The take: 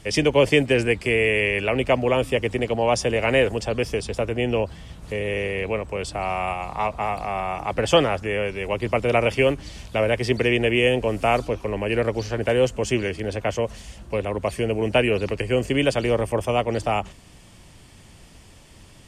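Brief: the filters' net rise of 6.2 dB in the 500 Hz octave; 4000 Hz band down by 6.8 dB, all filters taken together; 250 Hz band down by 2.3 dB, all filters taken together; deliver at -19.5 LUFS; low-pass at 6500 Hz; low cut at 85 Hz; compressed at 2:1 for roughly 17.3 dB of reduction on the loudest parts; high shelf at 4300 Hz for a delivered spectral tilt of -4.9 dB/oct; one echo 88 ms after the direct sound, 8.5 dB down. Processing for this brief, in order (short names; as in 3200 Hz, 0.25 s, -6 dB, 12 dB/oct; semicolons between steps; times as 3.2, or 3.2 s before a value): HPF 85 Hz; LPF 6500 Hz; bell 250 Hz -7.5 dB; bell 500 Hz +9 dB; bell 4000 Hz -8.5 dB; high shelf 4300 Hz -4.5 dB; compressor 2:1, threshold -40 dBFS; echo 88 ms -8.5 dB; gain +13 dB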